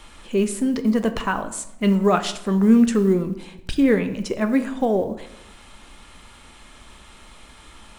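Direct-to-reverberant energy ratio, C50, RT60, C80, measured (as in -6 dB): 8.5 dB, 12.5 dB, 0.85 s, 15.5 dB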